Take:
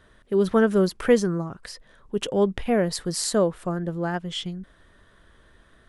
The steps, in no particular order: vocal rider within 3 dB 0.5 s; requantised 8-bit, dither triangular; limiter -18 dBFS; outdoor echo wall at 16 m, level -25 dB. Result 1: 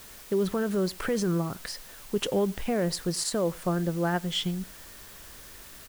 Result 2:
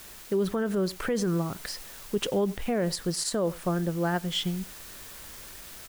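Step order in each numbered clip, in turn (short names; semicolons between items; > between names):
limiter > vocal rider > requantised > outdoor echo; outdoor echo > requantised > limiter > vocal rider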